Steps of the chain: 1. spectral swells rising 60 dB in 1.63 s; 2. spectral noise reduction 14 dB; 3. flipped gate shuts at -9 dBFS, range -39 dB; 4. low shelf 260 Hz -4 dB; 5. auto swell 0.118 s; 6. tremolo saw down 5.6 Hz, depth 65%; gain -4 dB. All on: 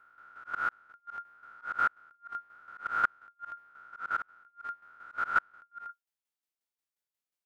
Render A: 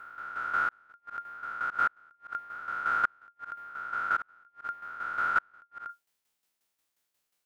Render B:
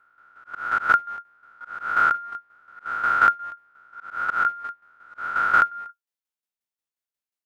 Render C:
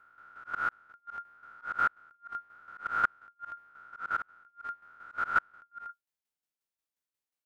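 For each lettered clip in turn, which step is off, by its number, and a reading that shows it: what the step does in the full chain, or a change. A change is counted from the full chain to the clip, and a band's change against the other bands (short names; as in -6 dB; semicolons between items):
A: 2, crest factor change -3.0 dB; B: 3, momentary loudness spread change -1 LU; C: 4, 250 Hz band +2.0 dB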